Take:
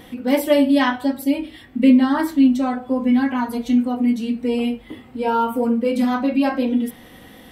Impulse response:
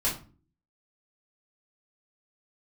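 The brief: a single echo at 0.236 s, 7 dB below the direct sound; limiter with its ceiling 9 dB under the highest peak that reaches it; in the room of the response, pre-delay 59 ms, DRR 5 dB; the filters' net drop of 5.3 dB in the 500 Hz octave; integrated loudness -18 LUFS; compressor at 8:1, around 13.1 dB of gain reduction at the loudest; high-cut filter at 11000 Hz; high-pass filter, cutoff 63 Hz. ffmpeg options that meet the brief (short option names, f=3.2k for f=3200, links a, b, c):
-filter_complex "[0:a]highpass=63,lowpass=11k,equalizer=f=500:t=o:g=-6,acompressor=threshold=-24dB:ratio=8,alimiter=level_in=0.5dB:limit=-24dB:level=0:latency=1,volume=-0.5dB,aecho=1:1:236:0.447,asplit=2[a][b];[1:a]atrim=start_sample=2205,adelay=59[c];[b][c]afir=irnorm=-1:irlink=0,volume=-13.5dB[d];[a][d]amix=inputs=2:normalize=0,volume=10.5dB"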